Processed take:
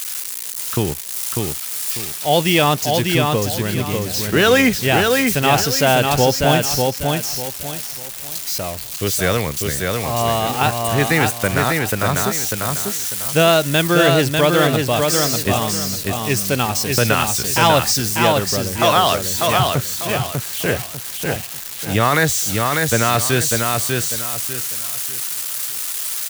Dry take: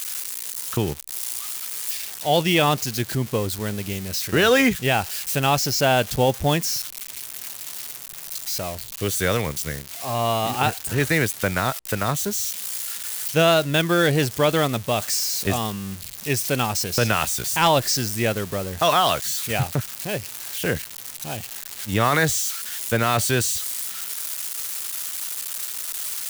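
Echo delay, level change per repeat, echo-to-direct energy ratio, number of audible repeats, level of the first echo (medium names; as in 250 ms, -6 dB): 596 ms, -10.5 dB, -3.0 dB, 4, -3.5 dB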